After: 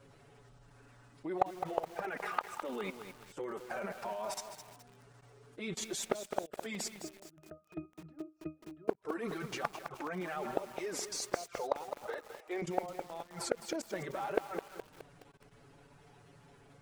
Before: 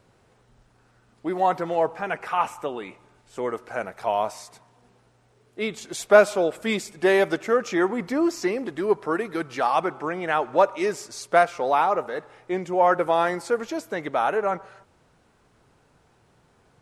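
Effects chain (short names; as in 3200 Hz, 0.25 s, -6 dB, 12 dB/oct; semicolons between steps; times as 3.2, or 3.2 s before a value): bin magnitudes rounded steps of 15 dB; 12.06–12.62 HPF 370 Hz 24 dB/oct; level quantiser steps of 21 dB; envelope flanger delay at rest 7.3 ms, full sweep at -19.5 dBFS; flipped gate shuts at -21 dBFS, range -26 dB; 6.94–8.88 octave resonator D#, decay 0.2 s; lo-fi delay 0.21 s, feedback 55%, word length 9-bit, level -8 dB; gain +6 dB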